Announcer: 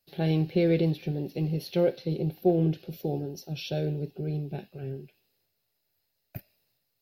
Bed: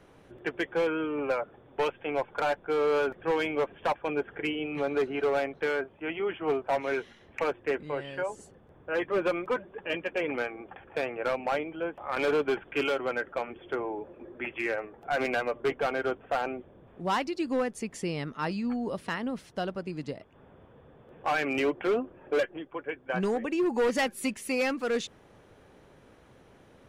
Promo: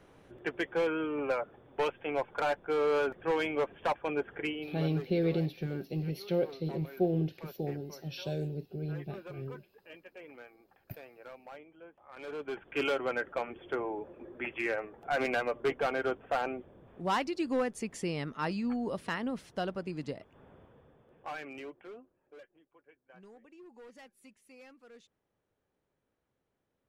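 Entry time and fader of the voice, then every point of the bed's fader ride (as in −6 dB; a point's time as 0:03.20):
4.55 s, −5.5 dB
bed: 0:04.42 −2.5 dB
0:05.21 −19.5 dB
0:12.13 −19.5 dB
0:12.84 −2 dB
0:20.55 −2 dB
0:22.29 −26.5 dB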